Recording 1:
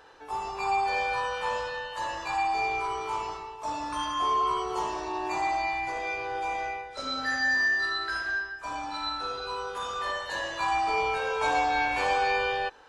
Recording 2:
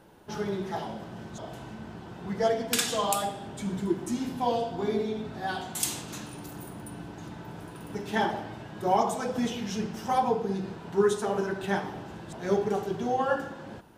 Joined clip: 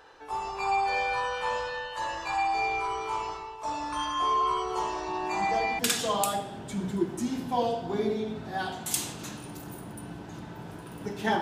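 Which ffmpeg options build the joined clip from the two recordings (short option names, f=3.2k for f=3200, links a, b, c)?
-filter_complex "[1:a]asplit=2[a][b];[0:a]apad=whole_dur=11.41,atrim=end=11.41,atrim=end=5.792[c];[b]atrim=start=2.678:end=8.3[d];[a]atrim=start=1.97:end=2.68,asetpts=PTS-STARTPTS,volume=-7.5dB,afade=t=in:d=0.004:c=hsin,afade=t=out:st=0.706:d=0.004:c=hsin,adelay=5080[e];[c][d]acrossfade=d=0.004:c1=hsin:c2=hsin[f];[f][e]amix=inputs=2:normalize=0"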